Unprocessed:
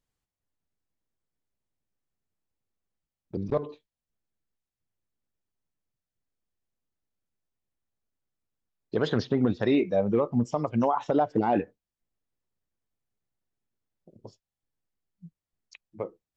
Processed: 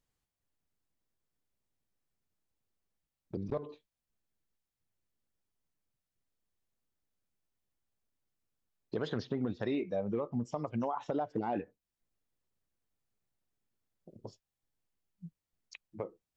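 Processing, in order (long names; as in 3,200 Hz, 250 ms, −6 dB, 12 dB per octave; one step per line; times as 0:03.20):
downward compressor 2 to 1, threshold −39 dBFS, peak gain reduction 11 dB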